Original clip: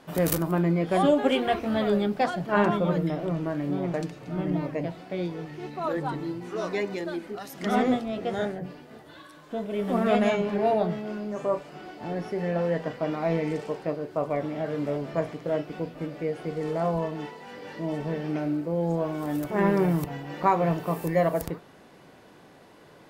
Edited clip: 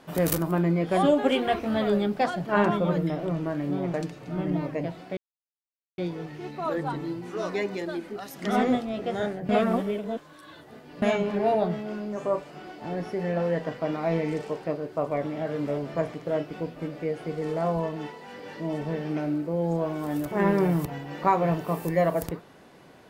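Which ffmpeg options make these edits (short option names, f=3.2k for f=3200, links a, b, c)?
-filter_complex "[0:a]asplit=4[a][b][c][d];[a]atrim=end=5.17,asetpts=PTS-STARTPTS,afade=t=out:st=5.166:d=0.004:c=hsin,apad=pad_dur=0.81[e];[b]atrim=start=5.17:end=8.682,asetpts=PTS-STARTPTS,afade=t=in:d=0.004:c=hsin[f];[c]atrim=start=8.678:end=10.212,asetpts=PTS-STARTPTS,areverse[g];[d]atrim=start=10.208[h];[e][f]concat=n=2:v=0:a=1[i];[i][g]acrossfade=d=0.004:c1=hsin:c2=hsin[j];[j][h]acrossfade=d=0.004:c1=hsin:c2=hsin"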